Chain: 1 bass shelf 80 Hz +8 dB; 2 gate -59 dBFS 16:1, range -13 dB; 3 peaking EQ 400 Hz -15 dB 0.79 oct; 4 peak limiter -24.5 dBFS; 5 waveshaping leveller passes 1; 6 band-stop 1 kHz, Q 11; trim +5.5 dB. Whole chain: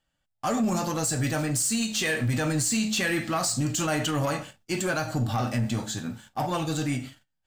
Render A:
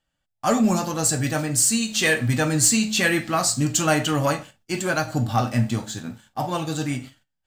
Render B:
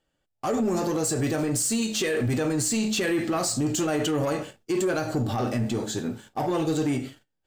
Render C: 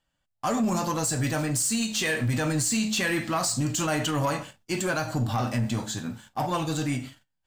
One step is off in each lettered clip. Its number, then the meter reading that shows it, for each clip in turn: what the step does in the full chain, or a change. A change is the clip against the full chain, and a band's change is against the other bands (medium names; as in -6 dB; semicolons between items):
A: 4, mean gain reduction 2.0 dB; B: 3, 500 Hz band +6.0 dB; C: 6, crest factor change -2.0 dB